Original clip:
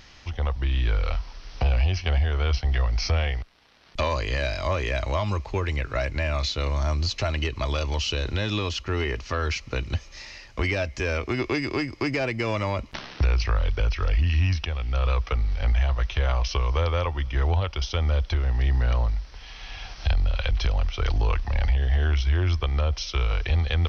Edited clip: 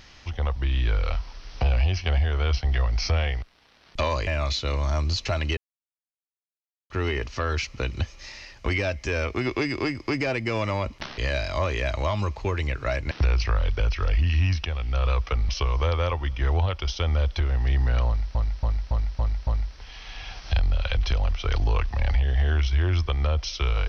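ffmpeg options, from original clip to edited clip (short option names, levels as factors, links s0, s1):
-filter_complex "[0:a]asplit=12[s0][s1][s2][s3][s4][s5][s6][s7][s8][s9][s10][s11];[s0]atrim=end=4.272[s12];[s1]atrim=start=6.198:end=7.5,asetpts=PTS-STARTPTS,afade=t=out:st=1.298:d=0.004:c=hsin[s13];[s2]atrim=start=7.5:end=8.83,asetpts=PTS-STARTPTS,volume=0[s14];[s3]atrim=start=8.83:end=13.112,asetpts=PTS-STARTPTS,afade=t=in:d=0.004:c=hsin[s15];[s4]atrim=start=4.268:end=6.202[s16];[s5]atrim=start=13.108:end=15.492[s17];[s6]atrim=start=16.428:end=19.292[s18];[s7]atrim=start=19.008:end=19.292[s19];[s8]atrim=start=19.008:end=19.292[s20];[s9]atrim=start=19.008:end=19.292[s21];[s10]atrim=start=19.008:end=19.292[s22];[s11]atrim=start=19.008[s23];[s13][s14][s15]concat=n=3:v=0:a=1[s24];[s12][s24]acrossfade=d=0.004:c1=hsin:c2=hsin[s25];[s25][s16]acrossfade=d=0.004:c1=hsin:c2=hsin[s26];[s26][s17]acrossfade=d=0.004:c1=hsin:c2=hsin[s27];[s27][s18]acrossfade=d=0.004:c1=hsin:c2=hsin[s28];[s28][s19]acrossfade=d=0.004:c1=hsin:c2=hsin[s29];[s29][s20]acrossfade=d=0.004:c1=hsin:c2=hsin[s30];[s30][s21]acrossfade=d=0.004:c1=hsin:c2=hsin[s31];[s31][s22]acrossfade=d=0.004:c1=hsin:c2=hsin[s32];[s32][s23]acrossfade=d=0.004:c1=hsin:c2=hsin"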